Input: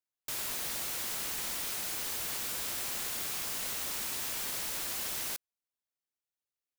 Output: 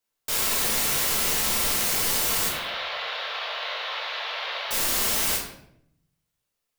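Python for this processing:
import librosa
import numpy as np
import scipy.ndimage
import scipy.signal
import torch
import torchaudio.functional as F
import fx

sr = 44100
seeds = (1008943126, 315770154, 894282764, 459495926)

y = fx.ellip_bandpass(x, sr, low_hz=550.0, high_hz=3800.0, order=3, stop_db=40, at=(2.48, 4.71))
y = fx.room_shoebox(y, sr, seeds[0], volume_m3=150.0, walls='mixed', distance_m=1.6)
y = F.gain(torch.from_numpy(y), 7.0).numpy()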